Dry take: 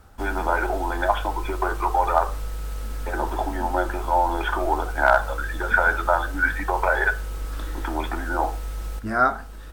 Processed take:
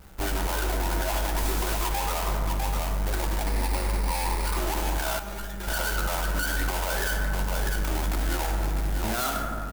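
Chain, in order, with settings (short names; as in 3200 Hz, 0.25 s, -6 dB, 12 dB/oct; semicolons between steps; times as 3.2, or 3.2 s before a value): half-waves squared off; echo 0.653 s -9.5 dB; soft clip -14 dBFS, distortion -14 dB; 3.45–4.57 ripple EQ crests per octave 0.91, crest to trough 7 dB; reverb RT60 2.1 s, pre-delay 5 ms, DRR 5.5 dB; compressor, threshold -18 dBFS, peak gain reduction 6.5 dB; high shelf 8600 Hz +10.5 dB; 1.37–1.89 modulation noise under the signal 10 dB; 5.19–5.68 resonator 200 Hz, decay 0.17 s, harmonics all, mix 80%; limiter -12.5 dBFS, peak gain reduction 6 dB; vibrato 0.6 Hz 14 cents; gain -4 dB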